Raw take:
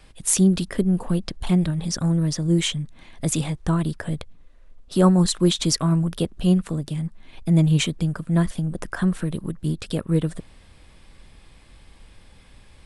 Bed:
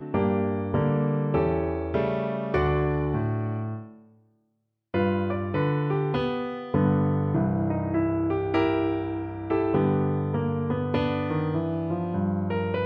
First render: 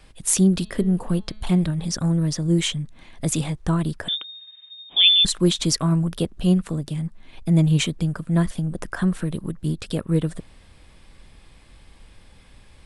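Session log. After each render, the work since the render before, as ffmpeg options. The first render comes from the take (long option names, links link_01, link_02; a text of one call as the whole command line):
ffmpeg -i in.wav -filter_complex "[0:a]asplit=3[link_01][link_02][link_03];[link_01]afade=type=out:start_time=0.6:duration=0.02[link_04];[link_02]bandreject=frequency=214.6:width_type=h:width=4,bandreject=frequency=429.2:width_type=h:width=4,bandreject=frequency=643.8:width_type=h:width=4,bandreject=frequency=858.4:width_type=h:width=4,bandreject=frequency=1073:width_type=h:width=4,bandreject=frequency=1287.6:width_type=h:width=4,bandreject=frequency=1502.2:width_type=h:width=4,bandreject=frequency=1716.8:width_type=h:width=4,bandreject=frequency=1931.4:width_type=h:width=4,bandreject=frequency=2146:width_type=h:width=4,bandreject=frequency=2360.6:width_type=h:width=4,bandreject=frequency=2575.2:width_type=h:width=4,bandreject=frequency=2789.8:width_type=h:width=4,bandreject=frequency=3004.4:width_type=h:width=4,bandreject=frequency=3219:width_type=h:width=4,bandreject=frequency=3433.6:width_type=h:width=4,bandreject=frequency=3648.2:width_type=h:width=4,bandreject=frequency=3862.8:width_type=h:width=4,bandreject=frequency=4077.4:width_type=h:width=4,bandreject=frequency=4292:width_type=h:width=4,bandreject=frequency=4506.6:width_type=h:width=4,afade=type=in:start_time=0.6:duration=0.02,afade=type=out:start_time=1.61:duration=0.02[link_05];[link_03]afade=type=in:start_time=1.61:duration=0.02[link_06];[link_04][link_05][link_06]amix=inputs=3:normalize=0,asettb=1/sr,asplit=3[link_07][link_08][link_09];[link_07]atrim=end=4.084[link_10];[link_08]atrim=start=4.08:end=5.25,asetpts=PTS-STARTPTS,afade=type=in:duration=0.004:curve=qsin,afade=type=out:start_time=1.166:duration=0.004:curve=qsin,lowpass=frequency=3100:width_type=q:width=0.5098,lowpass=frequency=3100:width_type=q:width=0.6013,lowpass=frequency=3100:width_type=q:width=0.9,lowpass=frequency=3100:width_type=q:width=2.563,afreqshift=-3700[link_11];[link_09]atrim=start=5.246[link_12];[link_10][link_11]acrossfade=duration=0.004:curve1=hsin:curve2=qsin[link_13];[link_13][link_12]acrossfade=duration=0.004:curve1=qsin:curve2=hsin" out.wav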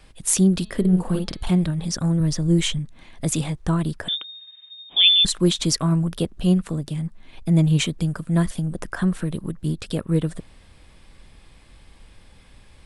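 ffmpeg -i in.wav -filter_complex "[0:a]asettb=1/sr,asplit=3[link_01][link_02][link_03];[link_01]atrim=end=0.804[link_04];[link_02]atrim=start=0.8:end=1.51,asetpts=PTS-STARTPTS,afade=type=in:duration=0.004:curve=qsin,afade=type=out:start_time=0.706:duration=0.004:curve=qsin,asplit=2[link_05][link_06];[link_06]adelay=49,volume=-4dB[link_07];[link_05][link_07]amix=inputs=2:normalize=0,atrim=end_sample=31311[link_08];[link_03]atrim=start=1.506[link_09];[link_04][link_08]acrossfade=duration=0.004:curve1=hsin:curve2=qsin[link_10];[link_10][link_09]acrossfade=duration=0.004:curve1=qsin:curve2=hsin,asettb=1/sr,asplit=3[link_11][link_12][link_13];[link_11]atrim=end=2.204[link_14];[link_12]atrim=start=2.2:end=2.79,asetpts=PTS-STARTPTS,afade=type=in:duration=0.004:curve=qsin,afade=type=out:start_time=0.586:duration=0.004:curve=qsin,lowshelf=frequency=64:gain=12[link_15];[link_13]atrim=start=2.786[link_16];[link_14][link_15]acrossfade=duration=0.004:curve1=hsin:curve2=qsin[link_17];[link_17][link_16]acrossfade=duration=0.004:curve1=qsin:curve2=hsin,asettb=1/sr,asplit=3[link_18][link_19][link_20];[link_18]atrim=end=7.984[link_21];[link_19]atrim=start=7.98:end=8.75,asetpts=PTS-STARTPTS,afade=type=in:duration=0.004:curve=qsin,afade=type=out:start_time=0.766:duration=0.004:curve=qsin,highshelf=frequency=5100:gain=4.5[link_22];[link_20]atrim=start=8.746[link_23];[link_21][link_22]acrossfade=duration=0.004:curve1=hsin:curve2=qsin[link_24];[link_24][link_23]acrossfade=duration=0.004:curve1=qsin:curve2=hsin" out.wav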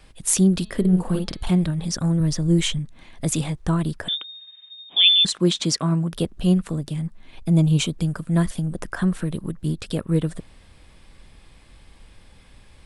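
ffmpeg -i in.wav -filter_complex "[0:a]asettb=1/sr,asplit=3[link_01][link_02][link_03];[link_01]atrim=end=4.134[link_04];[link_02]atrim=start=4.13:end=6.13,asetpts=PTS-STARTPTS,afade=type=in:duration=0.004:curve=qsin,afade=type=out:start_time=1.996:duration=0.004:curve=qsin,highpass=130,lowpass=8000[link_05];[link_03]atrim=start=6.126[link_06];[link_04][link_05]acrossfade=duration=0.004:curve1=hsin:curve2=qsin[link_07];[link_07][link_06]acrossfade=duration=0.004:curve1=qsin:curve2=hsin,asettb=1/sr,asplit=3[link_08][link_09][link_10];[link_08]atrim=end=7.494[link_11];[link_09]atrim=start=7.49:end=7.92,asetpts=PTS-STARTPTS,afade=type=in:duration=0.004:curve=qsin,afade=type=out:start_time=0.426:duration=0.004:curve=qsin,equalizer=frequency=1900:width=4.5:gain=-13.5[link_12];[link_10]atrim=start=7.916[link_13];[link_11][link_12]acrossfade=duration=0.004:curve1=hsin:curve2=qsin[link_14];[link_14][link_13]acrossfade=duration=0.004:curve1=qsin:curve2=hsin" out.wav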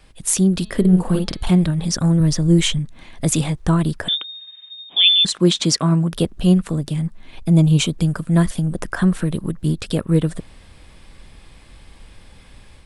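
ffmpeg -i in.wav -af "dynaudnorm=framelen=110:gausssize=3:maxgain=5dB" out.wav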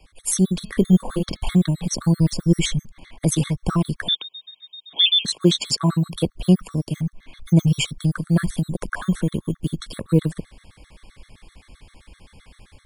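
ffmpeg -i in.wav -filter_complex "[0:a]acrossover=split=150|2400[link_01][link_02][link_03];[link_01]acrusher=samples=10:mix=1:aa=0.000001:lfo=1:lforange=6:lforate=0.24[link_04];[link_04][link_02][link_03]amix=inputs=3:normalize=0,afftfilt=real='re*gt(sin(2*PI*7.7*pts/sr)*(1-2*mod(floor(b*sr/1024/1100),2)),0)':imag='im*gt(sin(2*PI*7.7*pts/sr)*(1-2*mod(floor(b*sr/1024/1100),2)),0)':win_size=1024:overlap=0.75" out.wav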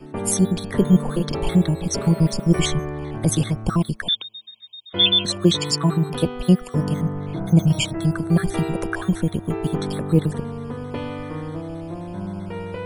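ffmpeg -i in.wav -i bed.wav -filter_complex "[1:a]volume=-4dB[link_01];[0:a][link_01]amix=inputs=2:normalize=0" out.wav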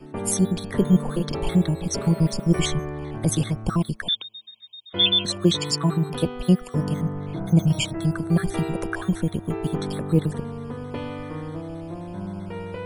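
ffmpeg -i in.wav -af "volume=-2.5dB" out.wav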